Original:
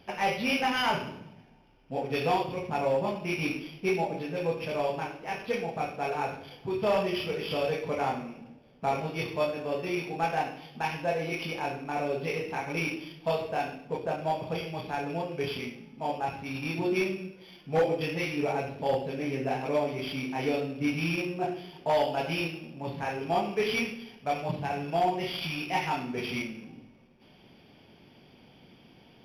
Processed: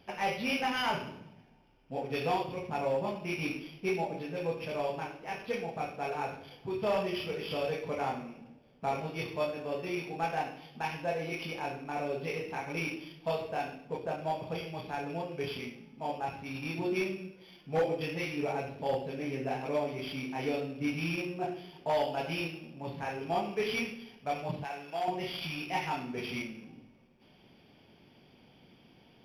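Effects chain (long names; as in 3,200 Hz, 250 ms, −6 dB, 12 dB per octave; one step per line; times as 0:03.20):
0:24.64–0:25.08: high-pass filter 820 Hz 6 dB per octave
floating-point word with a short mantissa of 8 bits
level −4 dB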